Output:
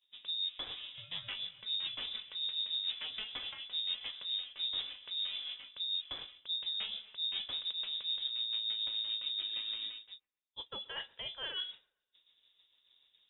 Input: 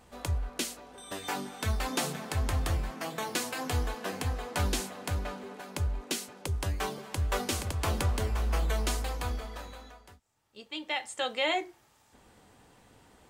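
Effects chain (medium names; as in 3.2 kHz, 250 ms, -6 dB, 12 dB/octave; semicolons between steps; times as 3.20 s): expander -46 dBFS; bass shelf 410 Hz +11.5 dB; reverse; compression 8:1, threshold -38 dBFS, peak gain reduction 23.5 dB; reverse; tremolo 6.9 Hz, depth 41%; on a send: feedback echo behind a high-pass 130 ms, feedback 40%, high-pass 1.8 kHz, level -24 dB; on the sum: frequency inversion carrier 3.7 kHz; trim +1.5 dB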